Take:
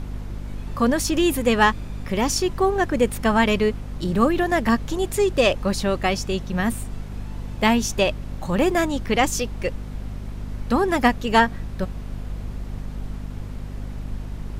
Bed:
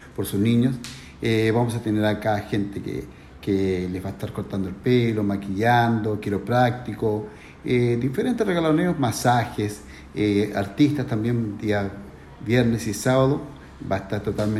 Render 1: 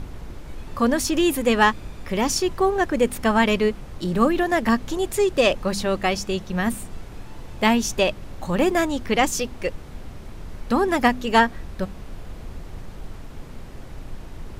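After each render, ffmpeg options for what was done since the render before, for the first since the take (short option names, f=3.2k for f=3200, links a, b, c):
-af "bandreject=f=50:t=h:w=4,bandreject=f=100:t=h:w=4,bandreject=f=150:t=h:w=4,bandreject=f=200:t=h:w=4,bandreject=f=250:t=h:w=4"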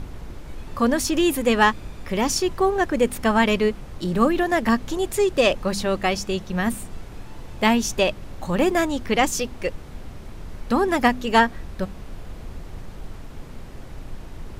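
-af anull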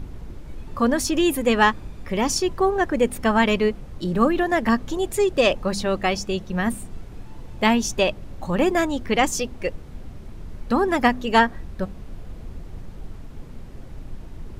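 -af "afftdn=nr=6:nf=-39"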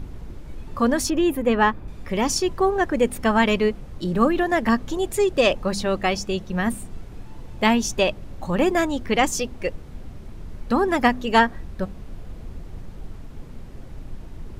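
-filter_complex "[0:a]asettb=1/sr,asplit=3[a][b][c];[a]atrim=end=1.104[d];[b]atrim=start=1.1:end=1.88,asetpts=PTS-STARTPTS,afade=t=in:d=0.004:c=qsin,afade=t=out:st=0.776:d=0.004:c=qsin,equalizer=f=7.1k:t=o:w=2.3:g=-13[e];[c]atrim=start=1.876[f];[d][e]acrossfade=d=0.004:c1=hsin:c2=qsin[g];[g][f]acrossfade=d=0.004:c1=qsin:c2=hsin"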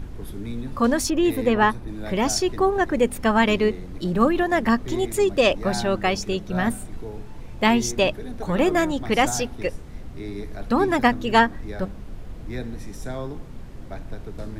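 -filter_complex "[1:a]volume=-13.5dB[a];[0:a][a]amix=inputs=2:normalize=0"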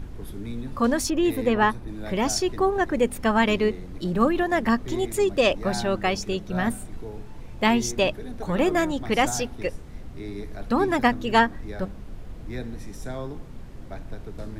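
-af "volume=-2dB"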